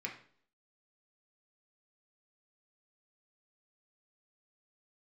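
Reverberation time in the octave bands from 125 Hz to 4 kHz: 0.55 s, 0.60 s, 0.60 s, 0.50 s, 0.45 s, 0.50 s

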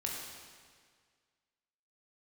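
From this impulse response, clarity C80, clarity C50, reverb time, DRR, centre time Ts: 2.5 dB, 1.0 dB, 1.8 s, -2.5 dB, 85 ms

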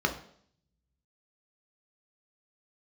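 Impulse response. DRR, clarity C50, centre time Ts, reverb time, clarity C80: 3.0 dB, 11.0 dB, 14 ms, 0.60 s, 14.5 dB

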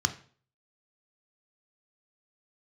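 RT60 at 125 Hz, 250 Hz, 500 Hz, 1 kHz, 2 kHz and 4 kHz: 0.50 s, 0.45 s, 0.50 s, 0.45 s, 0.40 s, 0.40 s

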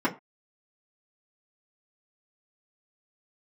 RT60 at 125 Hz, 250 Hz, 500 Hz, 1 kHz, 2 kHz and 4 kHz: 0.20 s, 0.25 s, 0.25 s, 0.30 s, 0.20 s, 0.15 s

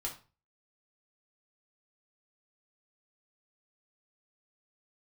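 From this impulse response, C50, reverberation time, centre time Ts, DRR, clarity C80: 10.0 dB, 0.35 s, 18 ms, -2.0 dB, 15.5 dB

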